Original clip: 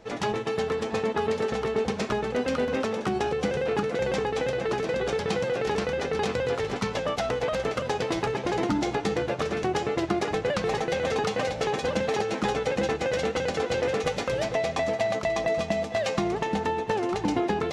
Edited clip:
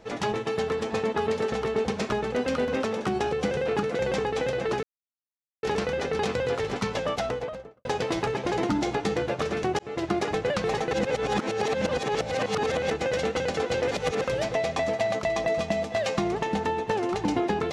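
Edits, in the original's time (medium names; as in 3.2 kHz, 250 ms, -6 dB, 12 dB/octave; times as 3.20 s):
4.83–5.63 s: mute
7.12–7.85 s: studio fade out
9.79–10.19 s: fade in equal-power
10.91–12.91 s: reverse
13.91–14.24 s: reverse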